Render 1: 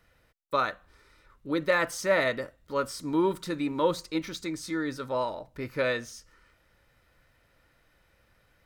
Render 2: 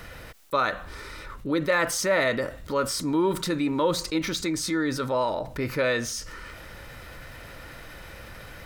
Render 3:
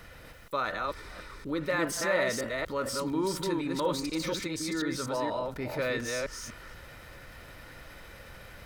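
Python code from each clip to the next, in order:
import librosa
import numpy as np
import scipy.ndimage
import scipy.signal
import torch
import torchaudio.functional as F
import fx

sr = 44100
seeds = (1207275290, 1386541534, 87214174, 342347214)

y1 = fx.env_flatten(x, sr, amount_pct=50)
y2 = fx.reverse_delay(y1, sr, ms=241, wet_db=-2.5)
y2 = F.gain(torch.from_numpy(y2), -7.0).numpy()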